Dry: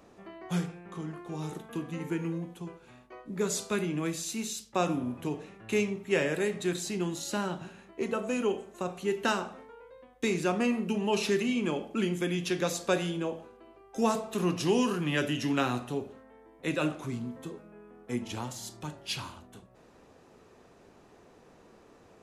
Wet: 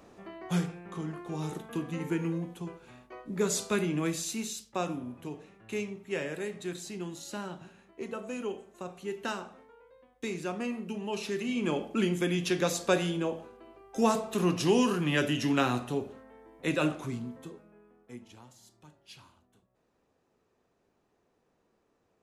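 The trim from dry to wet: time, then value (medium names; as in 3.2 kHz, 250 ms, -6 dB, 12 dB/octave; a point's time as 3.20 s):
4.18 s +1.5 dB
5.07 s -6.5 dB
11.32 s -6.5 dB
11.73 s +1.5 dB
16.93 s +1.5 dB
17.87 s -8 dB
18.38 s -16.5 dB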